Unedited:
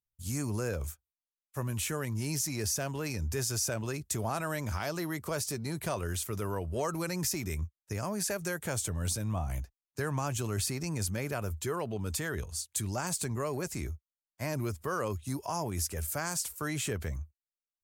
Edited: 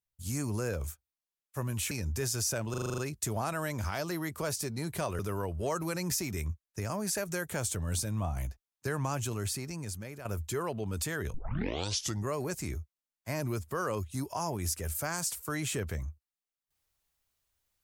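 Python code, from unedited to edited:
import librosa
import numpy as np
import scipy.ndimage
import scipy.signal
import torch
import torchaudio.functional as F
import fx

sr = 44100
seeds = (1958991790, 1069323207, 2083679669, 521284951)

y = fx.edit(x, sr, fx.cut(start_s=1.91, length_s=1.16),
    fx.stutter(start_s=3.86, slice_s=0.04, count=8),
    fx.cut(start_s=6.07, length_s=0.25),
    fx.fade_out_to(start_s=10.26, length_s=1.12, floor_db=-11.5),
    fx.tape_start(start_s=12.47, length_s=0.94), tone=tone)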